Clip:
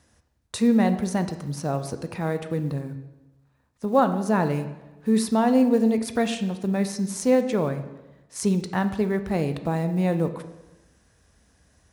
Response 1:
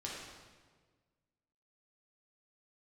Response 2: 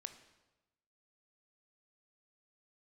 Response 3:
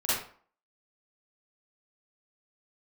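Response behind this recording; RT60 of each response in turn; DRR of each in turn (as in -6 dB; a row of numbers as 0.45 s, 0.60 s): 2; 1.5 s, 1.1 s, 0.50 s; -5.0 dB, 9.0 dB, -12.0 dB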